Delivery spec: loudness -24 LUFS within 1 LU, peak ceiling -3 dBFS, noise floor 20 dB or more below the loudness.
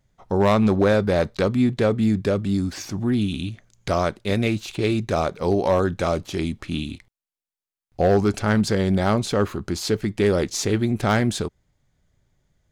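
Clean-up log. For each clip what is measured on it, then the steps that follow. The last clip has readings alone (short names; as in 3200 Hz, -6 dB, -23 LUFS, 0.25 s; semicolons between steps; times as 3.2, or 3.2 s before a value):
clipped 0.4%; flat tops at -11.0 dBFS; loudness -22.0 LUFS; peak -11.0 dBFS; loudness target -24.0 LUFS
-> clip repair -11 dBFS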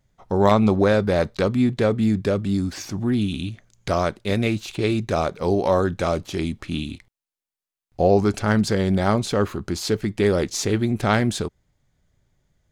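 clipped 0.0%; loudness -22.0 LUFS; peak -3.0 dBFS; loudness target -24.0 LUFS
-> gain -2 dB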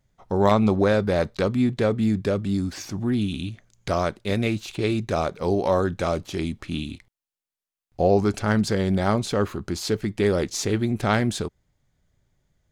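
loudness -24.0 LUFS; peak -5.0 dBFS; noise floor -91 dBFS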